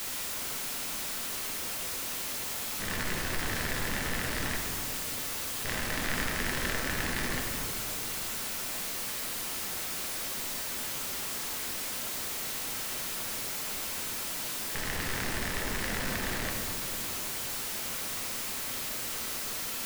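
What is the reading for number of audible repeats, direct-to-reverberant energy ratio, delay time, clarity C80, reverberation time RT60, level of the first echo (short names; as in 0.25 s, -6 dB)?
none, 0.0 dB, none, 4.0 dB, 2.5 s, none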